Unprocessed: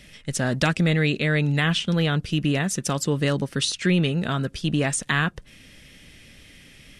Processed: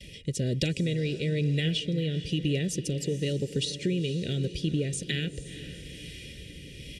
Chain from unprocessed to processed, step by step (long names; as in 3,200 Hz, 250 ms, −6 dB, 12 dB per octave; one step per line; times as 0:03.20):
Chebyshev band-stop filter 420–2,800 Hz, order 2
noise gate with hold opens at −41 dBFS
high-pass filter 46 Hz
high-shelf EQ 4,100 Hz −6 dB
comb filter 2.1 ms, depth 48%
downward compressor 2.5 to 1, threshold −39 dBFS, peak gain reduction 13.5 dB
rotating-speaker cabinet horn 1.1 Hz
feedback delay with all-pass diffusion 471 ms, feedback 51%, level −13 dB
level +9 dB